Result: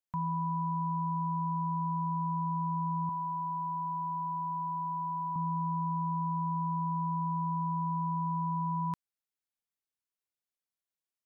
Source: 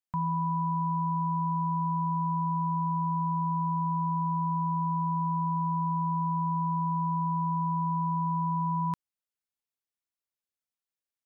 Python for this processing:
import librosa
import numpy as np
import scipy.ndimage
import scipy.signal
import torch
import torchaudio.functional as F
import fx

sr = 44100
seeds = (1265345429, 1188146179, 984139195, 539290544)

y = fx.tilt_eq(x, sr, slope=3.5, at=(3.09, 5.36))
y = y * 10.0 ** (-3.5 / 20.0)